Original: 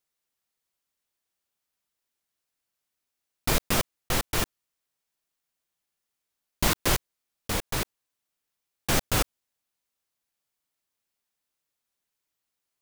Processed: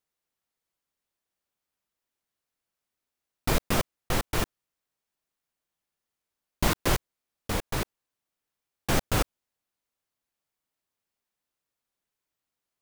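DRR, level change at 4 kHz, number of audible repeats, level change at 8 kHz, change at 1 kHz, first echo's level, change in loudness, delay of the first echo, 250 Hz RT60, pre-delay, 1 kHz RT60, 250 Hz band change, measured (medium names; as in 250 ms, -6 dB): no reverb, -3.5 dB, no echo, -4.5 dB, 0.0 dB, no echo, -2.0 dB, no echo, no reverb, no reverb, no reverb, +1.0 dB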